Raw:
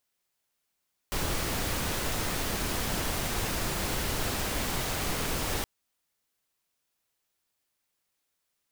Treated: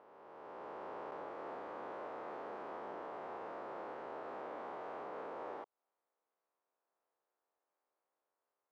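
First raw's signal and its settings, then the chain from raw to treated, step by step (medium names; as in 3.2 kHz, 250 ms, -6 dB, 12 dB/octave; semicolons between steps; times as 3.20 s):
noise pink, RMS -30.5 dBFS 4.52 s
reverse spectral sustain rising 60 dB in 2.45 s; compression 6:1, threshold -35 dBFS; Butterworth band-pass 670 Hz, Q 0.88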